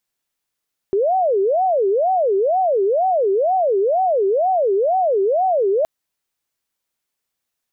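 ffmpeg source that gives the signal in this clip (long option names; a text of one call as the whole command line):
ffmpeg -f lavfi -i "aevalsrc='0.2*sin(2*PI*(572*t-188/(2*PI*2.1)*sin(2*PI*2.1*t)))':duration=4.92:sample_rate=44100" out.wav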